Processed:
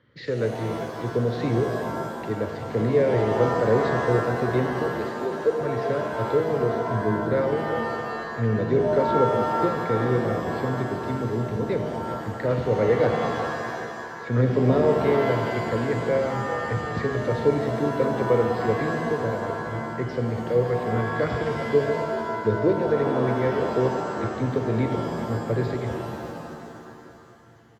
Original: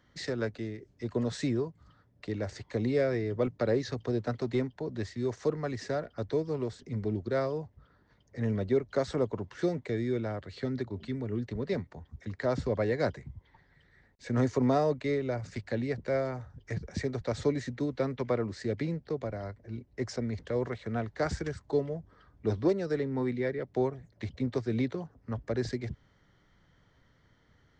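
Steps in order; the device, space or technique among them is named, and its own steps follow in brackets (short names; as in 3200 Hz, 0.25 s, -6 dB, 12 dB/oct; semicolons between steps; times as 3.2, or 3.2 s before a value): 4.96–5.61 HPF 320 Hz 24 dB/oct; frequency-shifting delay pedal into a guitar cabinet (frequency-shifting echo 0.389 s, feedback 51%, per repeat -47 Hz, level -12 dB; speaker cabinet 87–3800 Hz, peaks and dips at 120 Hz +6 dB, 480 Hz +9 dB, 740 Hz -10 dB); shimmer reverb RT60 2.1 s, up +7 st, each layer -2 dB, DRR 5 dB; gain +2.5 dB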